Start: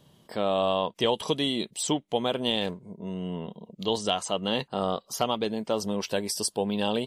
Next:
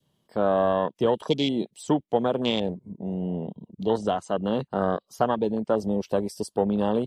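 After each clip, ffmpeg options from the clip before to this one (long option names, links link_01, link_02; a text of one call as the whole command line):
ffmpeg -i in.wav -filter_complex "[0:a]afwtdn=0.0316,adynamicequalizer=threshold=0.01:dfrequency=890:dqfactor=1.2:tfrequency=890:tqfactor=1.2:attack=5:release=100:ratio=0.375:range=2.5:mode=cutabove:tftype=bell,acrossover=split=160|2800[link_01][link_02][link_03];[link_03]alimiter=level_in=5dB:limit=-24dB:level=0:latency=1:release=182,volume=-5dB[link_04];[link_01][link_02][link_04]amix=inputs=3:normalize=0,volume=4.5dB" out.wav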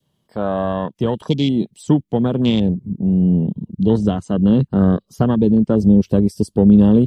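ffmpeg -i in.wav -af "asubboost=boost=10:cutoff=240,volume=2dB" out.wav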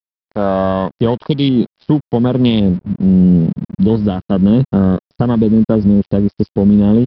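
ffmpeg -i in.wav -af "alimiter=limit=-8dB:level=0:latency=1:release=288,aresample=11025,aeval=exprs='sgn(val(0))*max(abs(val(0))-0.00596,0)':channel_layout=same,aresample=44100,volume=6dB" out.wav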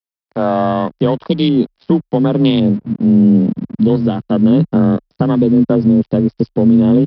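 ffmpeg -i in.wav -af "afreqshift=27" out.wav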